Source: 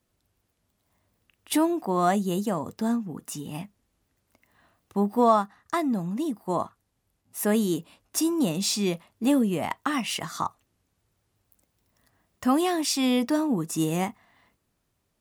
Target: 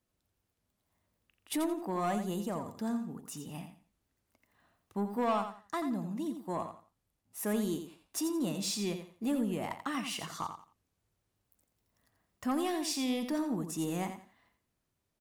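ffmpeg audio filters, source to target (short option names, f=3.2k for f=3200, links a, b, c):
-af "asoftclip=type=tanh:threshold=-16.5dB,aecho=1:1:86|172|258:0.376|0.094|0.0235,volume=-8dB"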